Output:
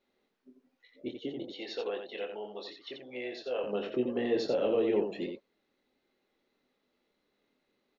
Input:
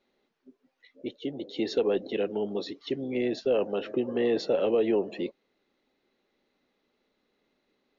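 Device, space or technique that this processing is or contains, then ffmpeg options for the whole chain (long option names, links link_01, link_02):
slapback doubling: -filter_complex "[0:a]asettb=1/sr,asplit=3[link_01][link_02][link_03];[link_01]atrim=end=1.544[link_04];[link_02]atrim=start=1.54:end=3.64,asetpts=PTS-STARTPTS,afade=type=in:duration=0.004:curve=qsin,afade=type=out:start_time=2.096:duration=0.004:curve=qsin,acrossover=split=530 5900:gain=0.126 1 0.0891[link_05][link_06][link_07];[link_05][link_06][link_07]amix=inputs=3:normalize=0[link_08];[link_03]atrim=start=3.636[link_09];[link_04][link_08]acrossfade=duration=0.004:curve1=hsin:curve2=qsin[link_10];[link_10][link_09]acrossfade=duration=0.004:curve1=qsin:curve2=hsin,asplit=3[link_11][link_12][link_13];[link_12]adelay=24,volume=-6dB[link_14];[link_13]adelay=87,volume=-6dB[link_15];[link_11][link_14][link_15]amix=inputs=3:normalize=0,volume=-4.5dB"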